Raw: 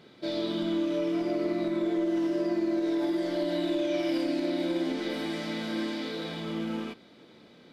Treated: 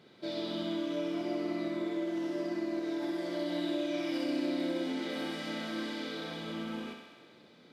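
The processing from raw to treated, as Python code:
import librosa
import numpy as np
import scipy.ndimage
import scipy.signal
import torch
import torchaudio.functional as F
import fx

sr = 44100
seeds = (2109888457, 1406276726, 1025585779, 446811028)

y = scipy.signal.sosfilt(scipy.signal.butter(2, 58.0, 'highpass', fs=sr, output='sos'), x)
y = fx.echo_thinned(y, sr, ms=65, feedback_pct=74, hz=280.0, wet_db=-5.5)
y = F.gain(torch.from_numpy(y), -5.0).numpy()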